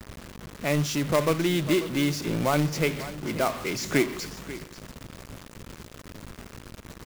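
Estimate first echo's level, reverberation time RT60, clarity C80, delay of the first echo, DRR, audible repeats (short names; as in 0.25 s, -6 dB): -15.0 dB, none, none, 0.54 s, none, 1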